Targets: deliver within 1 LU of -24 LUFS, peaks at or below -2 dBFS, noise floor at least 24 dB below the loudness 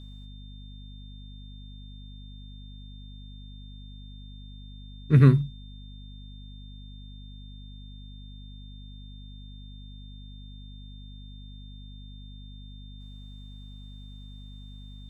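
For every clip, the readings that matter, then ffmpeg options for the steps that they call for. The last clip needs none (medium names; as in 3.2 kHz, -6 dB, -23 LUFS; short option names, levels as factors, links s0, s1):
hum 50 Hz; highest harmonic 250 Hz; hum level -41 dBFS; steady tone 3.6 kHz; tone level -53 dBFS; loudness -20.5 LUFS; peak level -6.5 dBFS; loudness target -24.0 LUFS
-> -af "bandreject=f=50:t=h:w=4,bandreject=f=100:t=h:w=4,bandreject=f=150:t=h:w=4,bandreject=f=200:t=h:w=4,bandreject=f=250:t=h:w=4"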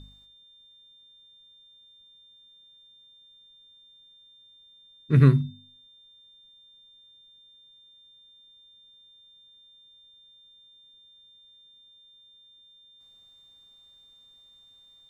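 hum not found; steady tone 3.6 kHz; tone level -53 dBFS
-> -af "bandreject=f=3600:w=30"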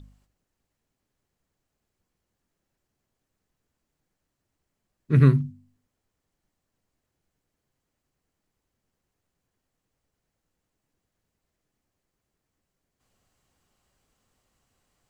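steady tone not found; loudness -20.5 LUFS; peak level -6.5 dBFS; loudness target -24.0 LUFS
-> -af "volume=0.668"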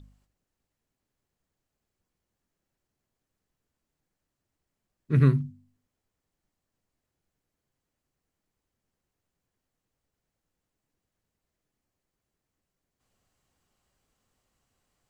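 loudness -24.0 LUFS; peak level -10.0 dBFS; noise floor -86 dBFS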